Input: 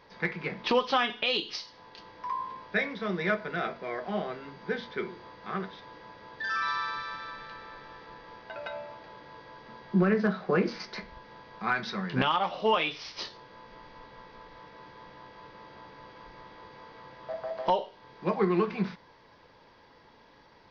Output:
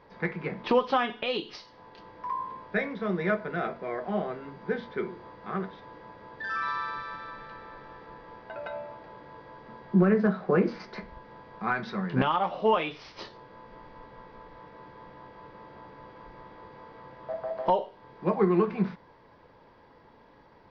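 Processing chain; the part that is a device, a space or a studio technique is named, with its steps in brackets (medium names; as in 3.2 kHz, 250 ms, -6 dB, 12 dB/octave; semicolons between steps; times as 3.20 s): through cloth (treble shelf 2.5 kHz -15 dB); trim +3 dB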